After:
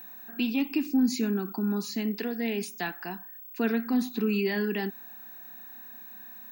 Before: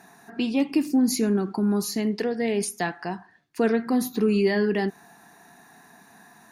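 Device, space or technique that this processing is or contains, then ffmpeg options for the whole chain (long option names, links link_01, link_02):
old television with a line whistle: -af "highpass=frequency=160:width=0.5412,highpass=frequency=160:width=1.3066,equalizer=frequency=240:width_type=q:width=4:gain=5,equalizer=frequency=550:width_type=q:width=4:gain=-7,equalizer=frequency=1500:width_type=q:width=4:gain=5,equalizer=frequency=2600:width_type=q:width=4:gain=8,equalizer=frequency=3700:width_type=q:width=4:gain=6,lowpass=frequency=8100:width=0.5412,lowpass=frequency=8100:width=1.3066,aeval=exprs='val(0)+0.0158*sin(2*PI*15734*n/s)':channel_layout=same,volume=-6.5dB"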